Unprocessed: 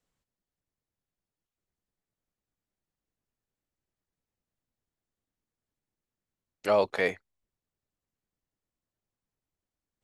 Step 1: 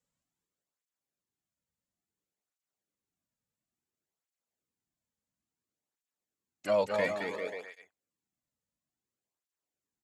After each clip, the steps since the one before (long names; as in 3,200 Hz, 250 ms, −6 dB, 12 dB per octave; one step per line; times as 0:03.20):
parametric band 7,200 Hz +6.5 dB 0.47 octaves
on a send: bouncing-ball delay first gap 220 ms, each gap 0.8×, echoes 5
on the sum: through-zero flanger with one copy inverted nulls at 0.58 Hz, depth 3 ms
level −2.5 dB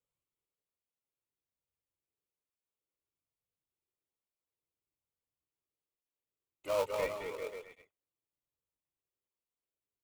dynamic equaliser 870 Hz, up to +5 dB, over −40 dBFS, Q 1.5
phaser with its sweep stopped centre 1,100 Hz, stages 8
in parallel at −6 dB: sample-rate reduction 1,800 Hz, jitter 20%
on the sum: level −5.5 dB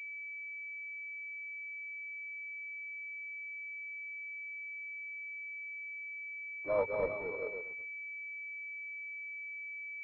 switching amplifier with a slow clock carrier 2,300 Hz
level +1.5 dB